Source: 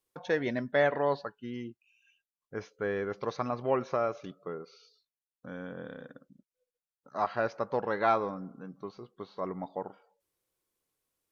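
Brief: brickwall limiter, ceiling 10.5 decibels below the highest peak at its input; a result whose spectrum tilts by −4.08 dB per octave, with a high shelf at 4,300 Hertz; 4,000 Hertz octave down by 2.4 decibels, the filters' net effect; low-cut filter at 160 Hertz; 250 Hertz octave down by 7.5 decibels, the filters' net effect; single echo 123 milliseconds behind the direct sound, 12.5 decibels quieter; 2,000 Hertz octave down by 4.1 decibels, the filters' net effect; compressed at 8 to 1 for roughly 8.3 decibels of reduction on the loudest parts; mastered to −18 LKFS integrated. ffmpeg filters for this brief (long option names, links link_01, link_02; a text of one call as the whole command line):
ffmpeg -i in.wav -af "highpass=160,equalizer=frequency=250:width_type=o:gain=-9,equalizer=frequency=2000:width_type=o:gain=-5.5,equalizer=frequency=4000:width_type=o:gain=-4.5,highshelf=frequency=4300:gain=6.5,acompressor=threshold=-31dB:ratio=8,alimiter=level_in=6.5dB:limit=-24dB:level=0:latency=1,volume=-6.5dB,aecho=1:1:123:0.237,volume=26dB" out.wav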